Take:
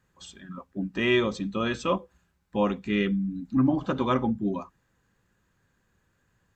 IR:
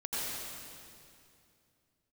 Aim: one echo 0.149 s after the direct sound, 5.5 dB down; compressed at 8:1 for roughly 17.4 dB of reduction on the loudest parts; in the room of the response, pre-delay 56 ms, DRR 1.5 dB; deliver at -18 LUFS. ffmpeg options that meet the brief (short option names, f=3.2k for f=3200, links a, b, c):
-filter_complex "[0:a]acompressor=threshold=-37dB:ratio=8,aecho=1:1:149:0.531,asplit=2[a][b];[1:a]atrim=start_sample=2205,adelay=56[c];[b][c]afir=irnorm=-1:irlink=0,volume=-7dB[d];[a][d]amix=inputs=2:normalize=0,volume=20dB"